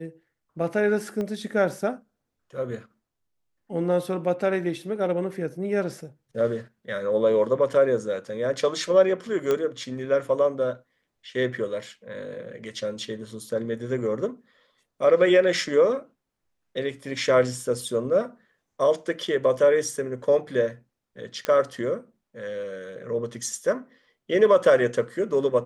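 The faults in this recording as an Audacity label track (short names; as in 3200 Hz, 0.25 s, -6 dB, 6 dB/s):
1.210000	1.210000	pop -19 dBFS
9.510000	9.510000	pop -12 dBFS
21.450000	21.450000	pop -12 dBFS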